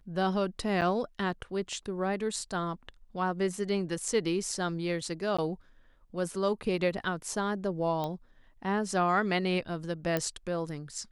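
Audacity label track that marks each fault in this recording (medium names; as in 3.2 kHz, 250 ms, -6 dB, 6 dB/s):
0.810000	0.820000	dropout 8.1 ms
5.370000	5.380000	dropout 15 ms
8.040000	8.040000	pop -21 dBFS
10.170000	10.170000	pop -15 dBFS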